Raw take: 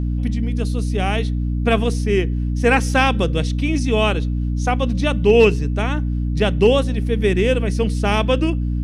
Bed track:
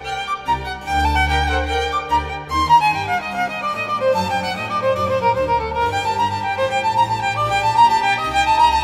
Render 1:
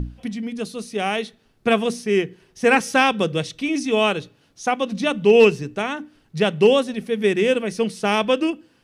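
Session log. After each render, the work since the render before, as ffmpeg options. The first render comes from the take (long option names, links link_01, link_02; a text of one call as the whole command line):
ffmpeg -i in.wav -af "bandreject=frequency=60:width_type=h:width=6,bandreject=frequency=120:width_type=h:width=6,bandreject=frequency=180:width_type=h:width=6,bandreject=frequency=240:width_type=h:width=6,bandreject=frequency=300:width_type=h:width=6" out.wav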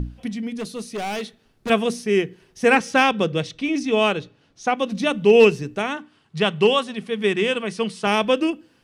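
ffmpeg -i in.wav -filter_complex "[0:a]asettb=1/sr,asplit=3[link_01][link_02][link_03];[link_01]atrim=end=0.594[link_04];[link_02]atrim=start=0.59:end=1.7,asetpts=PTS-STARTPTS,afade=type=in:duration=0.004:curve=qsin,afade=type=out:start_time=1.106:duration=0.004:curve=qsin,asoftclip=type=hard:threshold=-24.5dB[link_05];[link_03]atrim=start=1.696[link_06];[link_04][link_05]acrossfade=duration=0.004:curve1=hsin:curve2=qsin[link_07];[link_07][link_06]acrossfade=duration=0.004:curve1=qsin:curve2=hsin,asettb=1/sr,asplit=3[link_08][link_09][link_10];[link_08]atrim=end=2.764[link_11];[link_09]atrim=start=2.76:end=4.78,asetpts=PTS-STARTPTS,afade=type=in:duration=0.004:curve=qsin,afade=type=out:start_time=2.016:duration=0.004:curve=qsin,adynamicsmooth=sensitivity=1:basefreq=6800[link_12];[link_10]atrim=start=4.776[link_13];[link_11][link_12]acrossfade=duration=0.004:curve1=hsin:curve2=qsin[link_14];[link_14][link_13]acrossfade=duration=0.004:curve1=qsin:curve2=hsin,asettb=1/sr,asplit=3[link_15][link_16][link_17];[link_15]atrim=end=5.974[link_18];[link_16]atrim=start=5.97:end=8.07,asetpts=PTS-STARTPTS,afade=type=in:duration=0.004:curve=qsin,afade=type=out:start_time=2.096:duration=0.004:curve=qsin,highpass=110,equalizer=frequency=280:width_type=q:width=4:gain=-9,equalizer=frequency=530:width_type=q:width=4:gain=-6,equalizer=frequency=1100:width_type=q:width=4:gain=6,equalizer=frequency=3100:width_type=q:width=4:gain=4,equalizer=frequency=6000:width_type=q:width=4:gain=-4,lowpass=frequency=9400:width=0.5412,lowpass=frequency=9400:width=1.3066[link_19];[link_17]atrim=start=8.066[link_20];[link_18][link_19]acrossfade=duration=0.004:curve1=hsin:curve2=qsin[link_21];[link_21][link_20]acrossfade=duration=0.004:curve1=qsin:curve2=hsin" out.wav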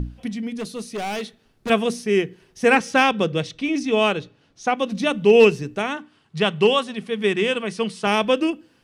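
ffmpeg -i in.wav -af anull out.wav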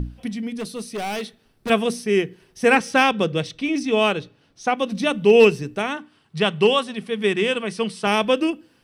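ffmpeg -i in.wav -af "highshelf=frequency=9100:gain=5,bandreject=frequency=6800:width=8.6" out.wav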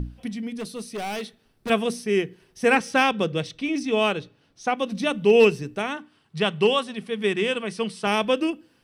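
ffmpeg -i in.wav -af "volume=-3dB" out.wav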